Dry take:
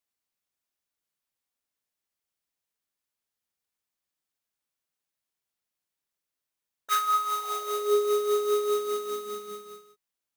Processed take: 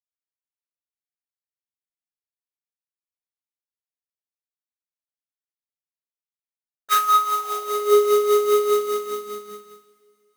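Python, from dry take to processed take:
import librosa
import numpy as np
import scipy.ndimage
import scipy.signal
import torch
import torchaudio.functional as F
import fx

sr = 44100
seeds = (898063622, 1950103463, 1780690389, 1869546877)

y = fx.power_curve(x, sr, exponent=1.4)
y = fx.rev_double_slope(y, sr, seeds[0], early_s=0.29, late_s=3.2, knee_db=-22, drr_db=6.5)
y = F.gain(torch.from_numpy(y), 7.5).numpy()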